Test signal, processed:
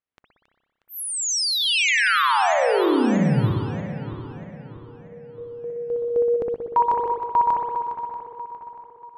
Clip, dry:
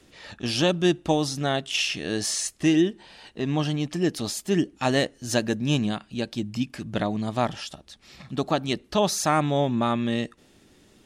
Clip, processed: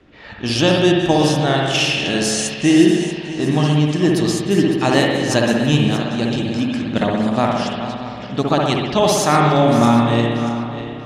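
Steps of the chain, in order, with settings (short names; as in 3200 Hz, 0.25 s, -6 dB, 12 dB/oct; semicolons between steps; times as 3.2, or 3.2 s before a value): regenerating reverse delay 0.318 s, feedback 63%, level -10 dB; low-pass opened by the level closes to 2300 Hz, open at -22 dBFS; spring tank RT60 1.3 s, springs 60 ms, chirp 65 ms, DRR -0.5 dB; gain +5.5 dB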